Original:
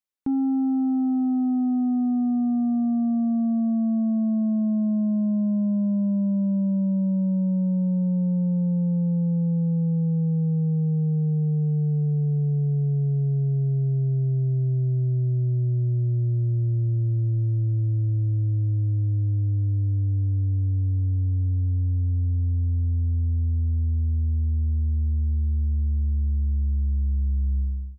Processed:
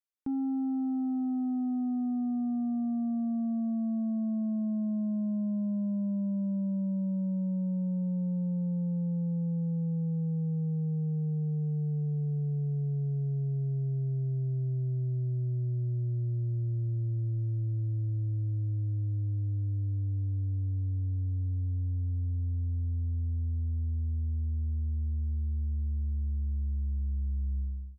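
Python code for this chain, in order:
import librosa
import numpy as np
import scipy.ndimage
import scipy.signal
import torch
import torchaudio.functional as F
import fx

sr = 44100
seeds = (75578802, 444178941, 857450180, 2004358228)

y = fx.lowpass(x, sr, hz=1000.0, slope=12, at=(26.99, 27.39))
y = y * 10.0 ** (-8.0 / 20.0)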